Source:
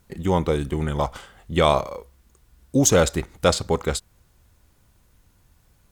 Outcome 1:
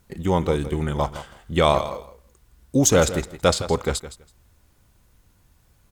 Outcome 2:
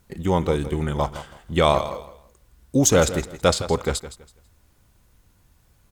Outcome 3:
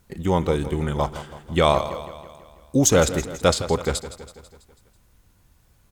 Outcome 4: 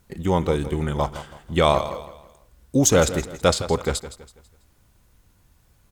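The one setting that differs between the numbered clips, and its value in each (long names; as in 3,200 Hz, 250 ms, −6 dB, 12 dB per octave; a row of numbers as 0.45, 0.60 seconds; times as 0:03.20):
repeating echo, feedback: 16, 25, 56, 37%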